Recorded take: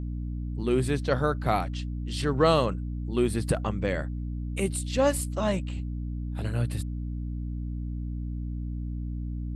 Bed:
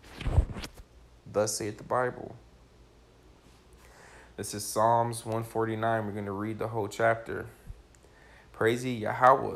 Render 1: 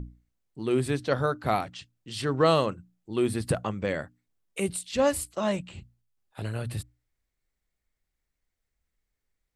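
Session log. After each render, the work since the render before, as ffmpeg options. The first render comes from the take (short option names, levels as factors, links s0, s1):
-af "bandreject=f=60:t=h:w=6,bandreject=f=120:t=h:w=6,bandreject=f=180:t=h:w=6,bandreject=f=240:t=h:w=6,bandreject=f=300:t=h:w=6"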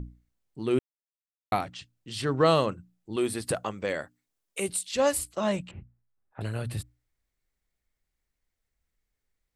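-filter_complex "[0:a]asettb=1/sr,asplit=3[s0][s1][s2];[s0]atrim=end=3.164[s3];[s1]atrim=start=3.16:end=5.19,asetpts=PTS-STARTPTS,afade=t=in:d=0.004:c=qsin,afade=t=out:st=2.026:d=0.004:c=qsin,bass=f=250:g=-9,treble=f=4000:g=4[s4];[s2]atrim=start=5.186[s5];[s3][s4]acrossfade=d=0.004:c1=hsin:c2=qsin[s6];[s6][s5]acrossfade=d=0.004:c1=qsin:c2=hsin,asettb=1/sr,asplit=3[s7][s8][s9];[s7]atrim=end=5.714[s10];[s8]atrim=start=5.71:end=6.41,asetpts=PTS-STARTPTS,afade=t=in:d=0.004:c=qsin,afade=t=out:st=0.696:d=0.004:c=qsin,lowpass=f=1900:w=0.5412,lowpass=f=1900:w=1.3066[s11];[s9]atrim=start=6.406[s12];[s10][s11]acrossfade=d=0.004:c1=hsin:c2=qsin[s13];[s13][s12]acrossfade=d=0.004:c1=qsin:c2=hsin,asplit=3[s14][s15][s16];[s14]atrim=end=0.79,asetpts=PTS-STARTPTS,afade=t=out:st=0.786:d=0.004:c=hsin[s17];[s15]atrim=start=0.79:end=1.52,asetpts=PTS-STARTPTS,volume=0[s18];[s16]atrim=start=1.52,asetpts=PTS-STARTPTS,afade=t=in:d=0.004:c=hsin[s19];[s17][s18][s19]concat=n=3:v=0:a=1"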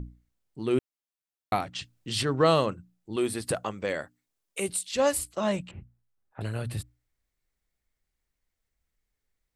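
-filter_complex "[0:a]asplit=3[s0][s1][s2];[s0]atrim=end=1.752[s3];[s1]atrim=start=1.748:end=2.232,asetpts=PTS-STARTPTS,volume=2.11[s4];[s2]atrim=start=2.228[s5];[s3][s4]acrossfade=d=0.004:c1=hsin:c2=hsin[s6];[s6][s5]acrossfade=d=0.004:c1=hsin:c2=hsin"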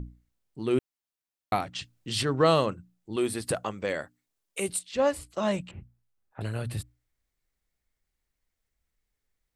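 -filter_complex "[0:a]asplit=3[s0][s1][s2];[s0]afade=t=out:st=4.78:d=0.02[s3];[s1]aemphasis=mode=reproduction:type=75kf,afade=t=in:st=4.78:d=0.02,afade=t=out:st=5.29:d=0.02[s4];[s2]afade=t=in:st=5.29:d=0.02[s5];[s3][s4][s5]amix=inputs=3:normalize=0"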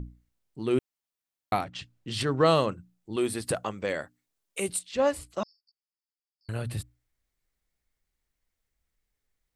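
-filter_complex "[0:a]asettb=1/sr,asplit=3[s0][s1][s2];[s0]atrim=end=1.644[s3];[s1]atrim=start=1.64:end=2.21,asetpts=PTS-STARTPTS,afade=t=in:d=0.004:c=qsin,afade=t=out:st=0.566:d=0.004:c=qsin,highshelf=f=4300:g=-8.5[s4];[s2]atrim=start=2.206[s5];[s3][s4]acrossfade=d=0.004:c1=hsin:c2=qsin[s6];[s6][s5]acrossfade=d=0.004:c1=qsin:c2=hsin,asettb=1/sr,asplit=3[s7][s8][s9];[s7]atrim=end=5.434[s10];[s8]atrim=start=5.43:end=6.49,asetpts=PTS-STARTPTS,afade=t=in:d=0.004:c=qsin,afade=t=out:st=1.056:d=0.004:c=qsin,asuperpass=centerf=4900:order=20:qfactor=5.3[s11];[s9]atrim=start=6.486[s12];[s10][s11]acrossfade=d=0.004:c1=hsin:c2=qsin[s13];[s13][s12]acrossfade=d=0.004:c1=qsin:c2=hsin"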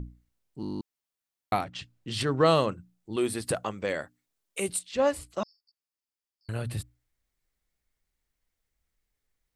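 -filter_complex "[0:a]asplit=11[s0][s1][s2][s3][s4][s5][s6][s7][s8][s9][s10];[s0]atrim=end=0.632[s11];[s1]atrim=start=0.608:end=0.632[s12];[s2]atrim=start=0.608:end=0.632[s13];[s3]atrim=start=0.608:end=0.632[s14];[s4]atrim=start=0.608:end=0.632[s15];[s5]atrim=start=0.608:end=0.632[s16];[s6]atrim=start=0.608:end=0.632[s17];[s7]atrim=start=0.608:end=0.632[s18];[s8]atrim=start=0.608:end=0.632[s19];[s9]atrim=start=0.608:end=0.632[s20];[s10]atrim=start=0.808[s21];[s11][s12]acrossfade=d=0.004:c1=hsin:c2=hsin[s22];[s22][s13]acrossfade=d=0.004:c1=hsin:c2=hsin[s23];[s23][s14]acrossfade=d=0.004:c1=hsin:c2=hsin[s24];[s24][s15]acrossfade=d=0.004:c1=hsin:c2=hsin[s25];[s25][s16]acrossfade=d=0.004:c1=hsin:c2=hsin[s26];[s26][s17]acrossfade=d=0.004:c1=hsin:c2=hsin[s27];[s27][s18]acrossfade=d=0.004:c1=hsin:c2=hsin[s28];[s28][s19]acrossfade=d=0.004:c1=hsin:c2=hsin[s29];[s29][s20]acrossfade=d=0.004:c1=hsin:c2=hsin[s30];[s30][s21]acrossfade=d=0.004:c1=hsin:c2=hsin"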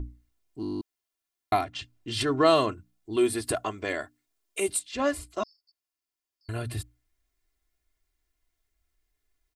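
-af "aecho=1:1:2.9:0.74"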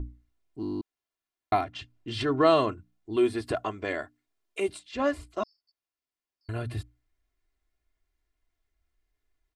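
-filter_complex "[0:a]acrossover=split=6700[s0][s1];[s1]acompressor=threshold=0.00501:ratio=4:attack=1:release=60[s2];[s0][s2]amix=inputs=2:normalize=0,highshelf=f=4900:g=-11.5"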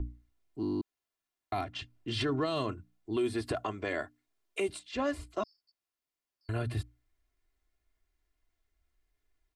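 -filter_complex "[0:a]acrossover=split=220|3000[s0][s1][s2];[s1]acompressor=threshold=0.0447:ratio=6[s3];[s0][s3][s2]amix=inputs=3:normalize=0,alimiter=limit=0.0708:level=0:latency=1:release=13"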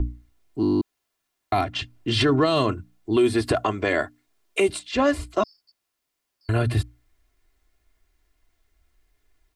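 -af "volume=3.76"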